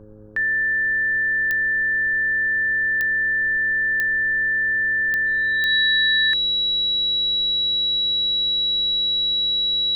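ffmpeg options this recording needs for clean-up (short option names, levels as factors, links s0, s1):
-af "adeclick=t=4,bandreject=f=106.2:t=h:w=4,bandreject=f=212.4:t=h:w=4,bandreject=f=318.6:t=h:w=4,bandreject=f=424.8:t=h:w=4,bandreject=f=531:t=h:w=4,bandreject=f=3900:w=30,agate=range=0.0891:threshold=0.224"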